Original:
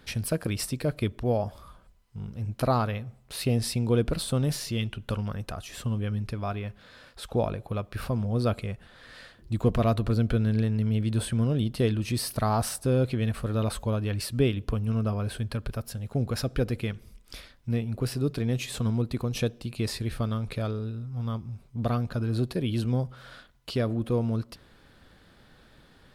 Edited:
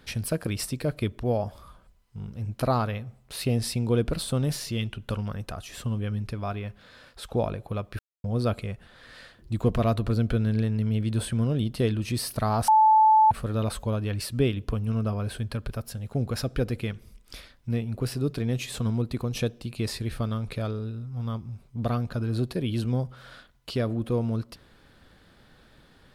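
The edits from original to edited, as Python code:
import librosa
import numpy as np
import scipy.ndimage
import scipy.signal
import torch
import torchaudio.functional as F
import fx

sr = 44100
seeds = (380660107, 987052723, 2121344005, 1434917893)

y = fx.edit(x, sr, fx.silence(start_s=7.99, length_s=0.25),
    fx.bleep(start_s=12.68, length_s=0.63, hz=871.0, db=-14.0), tone=tone)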